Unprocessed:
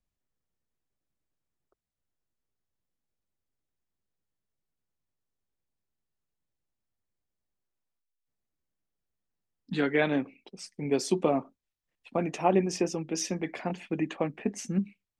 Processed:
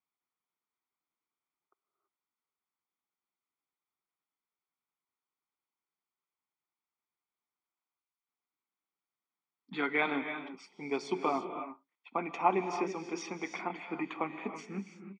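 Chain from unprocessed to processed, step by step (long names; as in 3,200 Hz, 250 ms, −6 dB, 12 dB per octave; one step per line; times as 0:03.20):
band-pass filter 480–2,500 Hz
comb filter 0.9 ms, depth 72%
reverb whose tail is shaped and stops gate 360 ms rising, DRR 7.5 dB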